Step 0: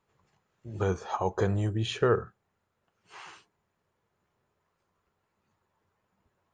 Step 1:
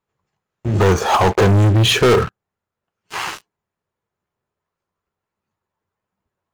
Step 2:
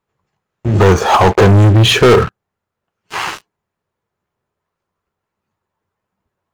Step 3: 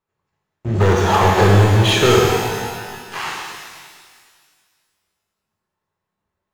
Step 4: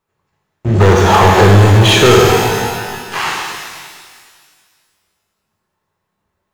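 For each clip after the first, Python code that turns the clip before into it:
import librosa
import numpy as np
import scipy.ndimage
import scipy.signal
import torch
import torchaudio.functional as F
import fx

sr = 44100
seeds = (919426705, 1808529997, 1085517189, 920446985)

y1 = fx.leveller(x, sr, passes=5)
y1 = y1 * librosa.db_to_amplitude(4.5)
y2 = fx.high_shelf(y1, sr, hz=5200.0, db=-4.5)
y2 = y2 * librosa.db_to_amplitude(5.0)
y3 = fx.rev_shimmer(y2, sr, seeds[0], rt60_s=1.8, semitones=12, shimmer_db=-8, drr_db=-1.5)
y3 = y3 * librosa.db_to_amplitude(-8.0)
y4 = 10.0 ** (-9.5 / 20.0) * np.tanh(y3 / 10.0 ** (-9.5 / 20.0))
y4 = y4 * librosa.db_to_amplitude(8.0)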